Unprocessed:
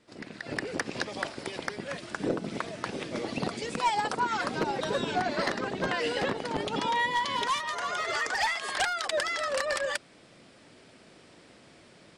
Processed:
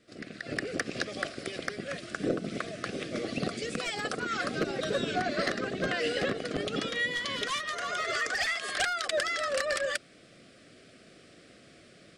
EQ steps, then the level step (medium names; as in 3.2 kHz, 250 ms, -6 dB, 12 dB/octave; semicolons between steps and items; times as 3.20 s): Butterworth band-stop 920 Hz, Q 2.3; 0.0 dB